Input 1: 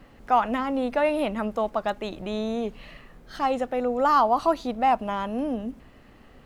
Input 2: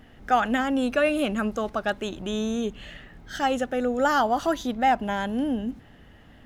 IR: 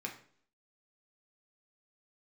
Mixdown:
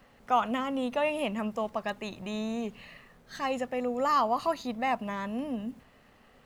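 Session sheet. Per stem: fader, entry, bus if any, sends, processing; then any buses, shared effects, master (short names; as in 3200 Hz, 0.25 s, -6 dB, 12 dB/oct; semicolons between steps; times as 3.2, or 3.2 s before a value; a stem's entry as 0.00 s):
-4.0 dB, 0.00 s, no send, low shelf 150 Hz -10 dB
-10.0 dB, 0.00 s, no send, HPF 70 Hz 12 dB/oct; gate -41 dBFS, range -11 dB; requantised 10-bit, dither none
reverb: off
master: bell 320 Hz -8 dB 0.4 oct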